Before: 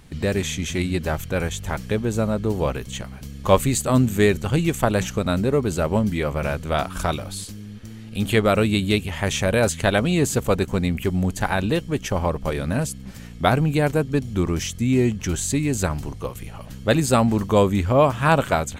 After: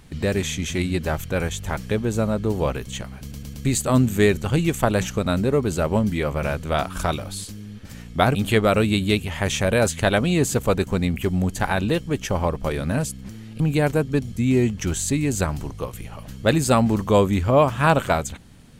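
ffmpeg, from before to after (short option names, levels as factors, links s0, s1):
-filter_complex "[0:a]asplit=10[s0][s1][s2][s3][s4][s5][s6][s7][s8][s9];[s0]atrim=end=3.322[s10];[s1]atrim=start=3.208:end=3.322[s11];[s2]atrim=start=3.208:end=3.322[s12];[s3]atrim=start=3.208:end=3.322[s13];[s4]atrim=start=3.648:end=7.852[s14];[s5]atrim=start=13.098:end=13.602[s15];[s6]atrim=start=8.158:end=13.102[s16];[s7]atrim=start=7.848:end=8.162[s17];[s8]atrim=start=13.598:end=14.322[s18];[s9]atrim=start=14.738[s19];[s10][s11]acrossfade=d=0.004:c1=hsin:c2=hsin[s20];[s20][s12]acrossfade=d=0.004:c1=hsin:c2=hsin[s21];[s21][s13]acrossfade=d=0.004:c1=hsin:c2=hsin[s22];[s22][s14]acrossfade=d=0.004:c1=hsin:c2=hsin[s23];[s23][s15]acrossfade=d=0.004:c1=hsin:c2=hsin[s24];[s24][s16]acrossfade=d=0.004:c1=hsin:c2=hsin[s25];[s25][s17]acrossfade=d=0.004:c1=hsin:c2=hsin[s26];[s26][s18]acrossfade=d=0.004:c1=hsin:c2=hsin[s27];[s27][s19]acrossfade=d=0.004:c1=hsin:c2=hsin"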